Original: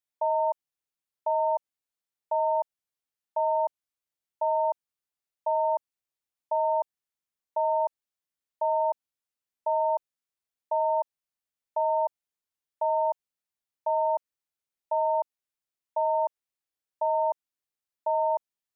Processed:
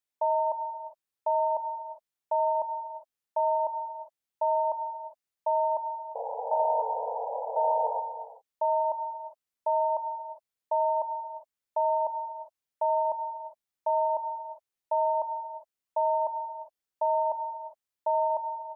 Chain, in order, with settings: painted sound noise, 6.15–8, 440–980 Hz -34 dBFS; non-linear reverb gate 0.43 s flat, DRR 8 dB

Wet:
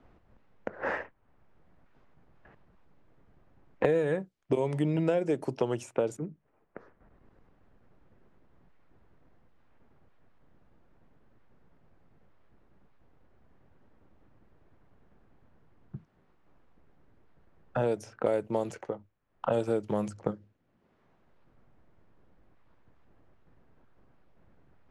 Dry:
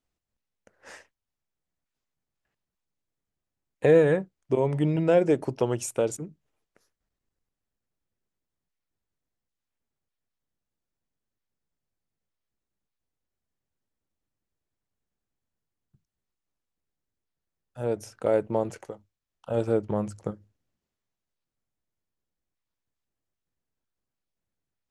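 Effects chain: low-pass opened by the level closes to 1400 Hz, open at -23.5 dBFS; three-band squash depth 100%; gain -3.5 dB

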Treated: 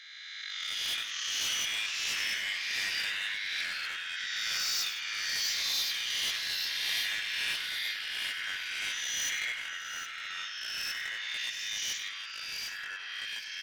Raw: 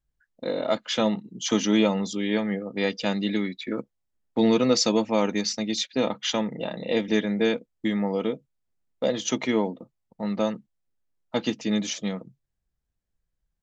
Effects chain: spectral swells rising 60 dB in 1.33 s; elliptic high-pass 1800 Hz, stop band 80 dB; high shelf 3300 Hz -7 dB; hard clip -30.5 dBFS, distortion -8 dB; echoes that change speed 0.485 s, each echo -2 st, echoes 2; tapped delay 97/162/717/763 ms -10/-16.5/-18.5/-11.5 dB; backwards sustainer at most 23 dB/s

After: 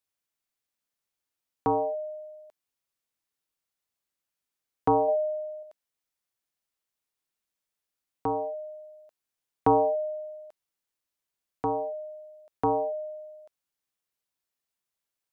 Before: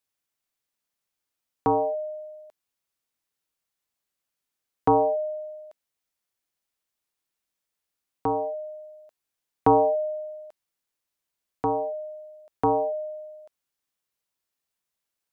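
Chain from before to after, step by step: 5.08–5.63 bell 670 Hz +4.5 dB 0.77 oct; gain -3 dB

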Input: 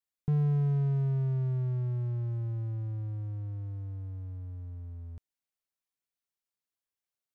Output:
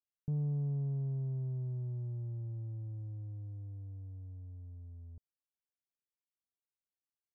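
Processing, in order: Gaussian blur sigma 11 samples; Doppler distortion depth 0.14 ms; gain -7 dB

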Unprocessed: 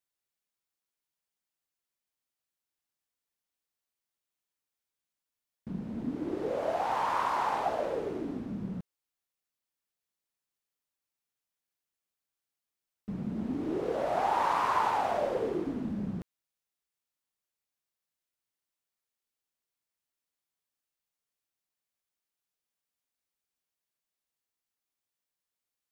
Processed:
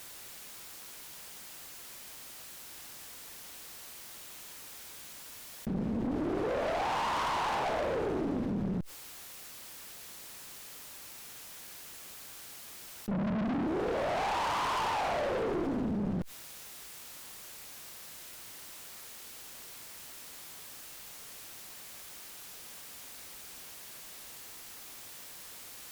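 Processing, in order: 13.11–13.67 bell 200 Hz +14.5 dB 1.1 oct; tube stage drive 36 dB, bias 0.65; fast leveller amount 70%; gain +5.5 dB

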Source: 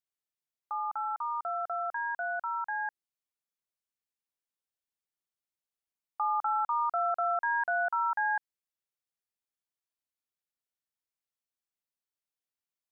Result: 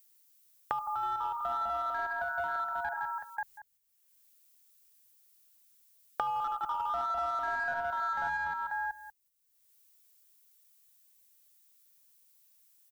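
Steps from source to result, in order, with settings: step gate "x.xxx.xxxxxx" 95 bpm -60 dB; tapped delay 74/104/164/218/336/539 ms -6/-10.5/-3.5/-14/-12/-5.5 dB; added noise violet -65 dBFS; in parallel at -3.5 dB: overloaded stage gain 29.5 dB; on the sum: low shelf 370 Hz +10 dB; gate -52 dBFS, range -24 dB; on a send: echo 0.189 s -18.5 dB; on the sum: three-band squash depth 100%; gain -9 dB

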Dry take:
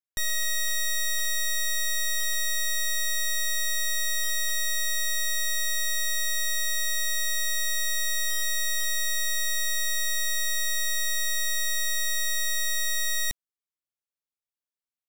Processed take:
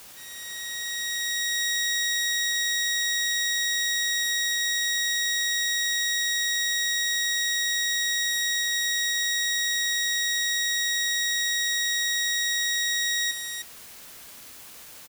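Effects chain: opening faded in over 1.62 s; spectral gate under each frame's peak -25 dB strong; HPF 330 Hz 24 dB/oct; in parallel at -10 dB: requantised 6-bit, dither triangular; on the sum: echo 0.308 s -6.5 dB; on a send at -17 dB: reverb RT60 0.30 s, pre-delay 3 ms

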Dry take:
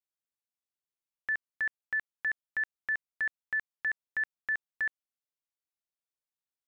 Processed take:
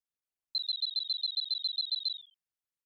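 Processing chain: formant sharpening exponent 3; frequency-shifting echo 0.1 s, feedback 46%, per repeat -70 Hz, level -6 dB; speed mistake 33 rpm record played at 78 rpm

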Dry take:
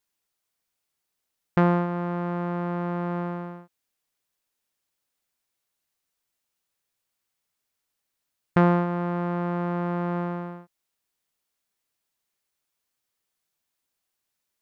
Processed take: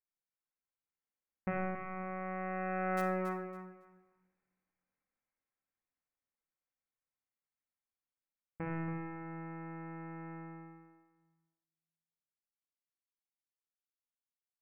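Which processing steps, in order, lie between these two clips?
self-modulated delay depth 0.69 ms; Doppler pass-by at 3.77, 22 m/s, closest 6.3 m; steep low-pass 2400 Hz 72 dB/oct; in parallel at -11.5 dB: bit-crush 5-bit; on the sum: feedback echo 0.278 s, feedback 21%, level -9.5 dB; shoebox room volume 2600 m³, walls furnished, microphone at 2.1 m; gain +5 dB

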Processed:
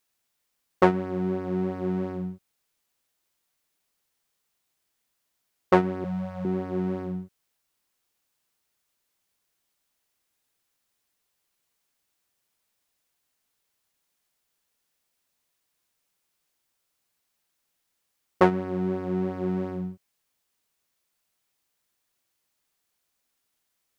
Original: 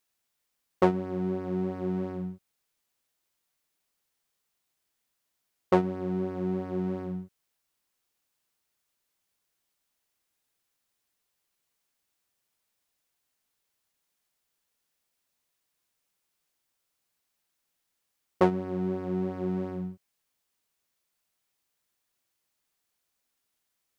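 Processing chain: 6.04–6.45 elliptic band-stop 220–530 Hz; dynamic EQ 1700 Hz, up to +6 dB, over -42 dBFS, Q 0.83; gain +2.5 dB

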